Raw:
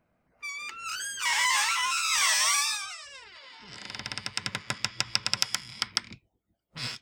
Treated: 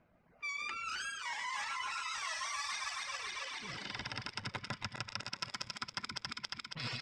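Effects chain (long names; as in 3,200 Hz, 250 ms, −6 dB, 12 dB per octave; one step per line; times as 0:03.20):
feedback delay that plays each chunk backwards 138 ms, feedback 75%, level −4 dB
low-pass filter 4,400 Hz 12 dB per octave
on a send: multi-tap delay 124/207 ms −13/−19 dB
on the sum: dynamic equaliser 2,900 Hz, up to −6 dB, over −37 dBFS, Q 0.71
reverb reduction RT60 1.8 s
reversed playback
downward compressor 10 to 1, threshold −39 dBFS, peak gain reduction 14 dB
reversed playback
level +2.5 dB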